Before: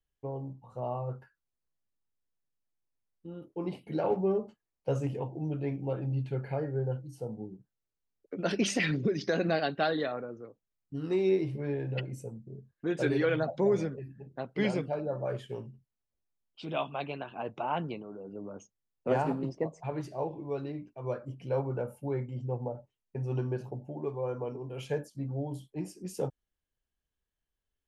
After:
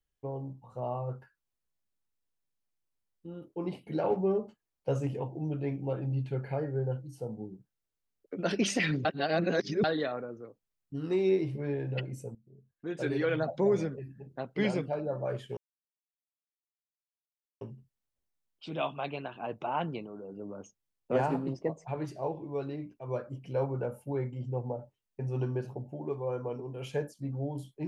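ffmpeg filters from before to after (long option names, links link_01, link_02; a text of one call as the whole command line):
ffmpeg -i in.wav -filter_complex "[0:a]asplit=5[link_01][link_02][link_03][link_04][link_05];[link_01]atrim=end=9.052[link_06];[link_02]atrim=start=9.048:end=9.842,asetpts=PTS-STARTPTS,areverse[link_07];[link_03]atrim=start=9.838:end=12.35,asetpts=PTS-STARTPTS,afade=type=out:start_time=2.508:duration=0.004:curve=hsin:silence=0.112202[link_08];[link_04]atrim=start=12.35:end=15.57,asetpts=PTS-STARTPTS,afade=type=in:duration=1.15:silence=0.112202,afade=type=out:start_time=3.216:duration=0.004:curve=hsin,apad=pad_dur=2.04[link_09];[link_05]atrim=start=15.57,asetpts=PTS-STARTPTS,afade=type=in:duration=0.004:curve=hsin[link_10];[link_06][link_07]acrossfade=duration=0.004:curve1=hsin:curve2=hsin[link_11];[link_08][link_09][link_10]concat=n=3:v=0:a=1[link_12];[link_11][link_12]acrossfade=duration=0.004:curve1=hsin:curve2=hsin" out.wav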